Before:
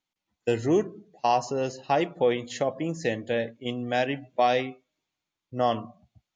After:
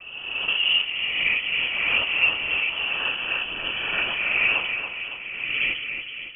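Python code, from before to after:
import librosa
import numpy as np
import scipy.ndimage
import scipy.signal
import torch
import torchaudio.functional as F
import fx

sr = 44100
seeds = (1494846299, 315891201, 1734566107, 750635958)

y = fx.spec_swells(x, sr, rise_s=1.53)
y = fx.noise_vocoder(y, sr, seeds[0], bands=12)
y = fx.echo_split(y, sr, split_hz=340.0, low_ms=465, high_ms=280, feedback_pct=52, wet_db=-7.0)
y = fx.freq_invert(y, sr, carrier_hz=3200)
y = F.gain(torch.from_numpy(y), -1.5).numpy()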